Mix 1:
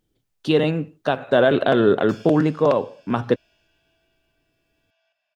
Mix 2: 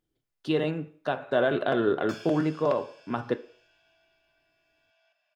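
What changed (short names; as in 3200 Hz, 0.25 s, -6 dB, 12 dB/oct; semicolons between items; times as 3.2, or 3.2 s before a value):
speech -10.5 dB; reverb: on, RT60 0.45 s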